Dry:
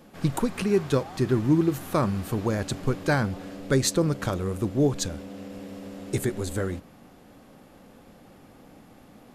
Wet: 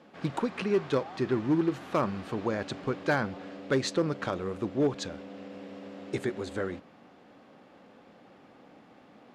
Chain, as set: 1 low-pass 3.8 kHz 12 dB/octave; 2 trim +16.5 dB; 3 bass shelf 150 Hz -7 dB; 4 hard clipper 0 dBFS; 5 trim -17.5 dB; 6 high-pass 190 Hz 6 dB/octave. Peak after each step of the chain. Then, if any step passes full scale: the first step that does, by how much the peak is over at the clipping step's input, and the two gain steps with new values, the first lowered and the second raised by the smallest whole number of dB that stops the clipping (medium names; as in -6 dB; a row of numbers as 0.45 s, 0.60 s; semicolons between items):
-10.5 dBFS, +6.0 dBFS, +5.0 dBFS, 0.0 dBFS, -17.5 dBFS, -14.0 dBFS; step 2, 5.0 dB; step 2 +11.5 dB, step 5 -12.5 dB